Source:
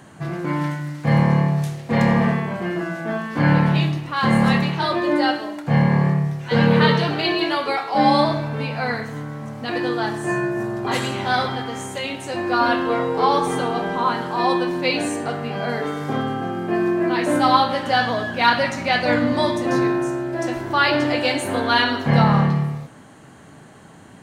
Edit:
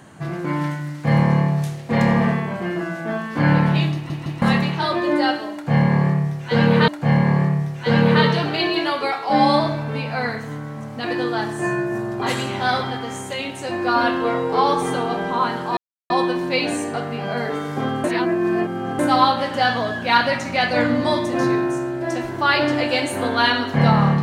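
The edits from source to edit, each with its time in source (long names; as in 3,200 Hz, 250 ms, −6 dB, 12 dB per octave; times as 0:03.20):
0:03.94: stutter in place 0.16 s, 3 plays
0:05.53–0:06.88: repeat, 2 plays
0:14.42: splice in silence 0.33 s
0:16.36–0:17.31: reverse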